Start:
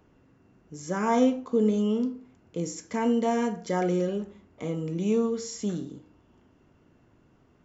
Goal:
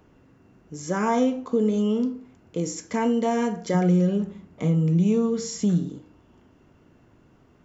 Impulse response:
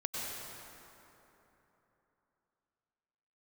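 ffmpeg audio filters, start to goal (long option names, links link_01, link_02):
-filter_complex "[0:a]asettb=1/sr,asplit=3[link_01][link_02][link_03];[link_01]atrim=end=3.744[link_04];[link_02]atrim=start=3.74:end=5.9,asetpts=PTS-STARTPTS,afade=type=in:duration=0.004:curve=qsin,afade=type=out:start_time=2.156:duration=0.004:curve=qsin,equalizer=frequency=170:width=3.3:gain=13.5[link_05];[link_03]atrim=start=5.896[link_06];[link_04][link_05]acrossfade=duration=0.004:curve1=hsin:curve2=qsin[link_07];[link_07][link_06]acrossfade=duration=0.004:curve1=qsin:curve2=hsin,acompressor=threshold=-25dB:ratio=2,volume=4.5dB"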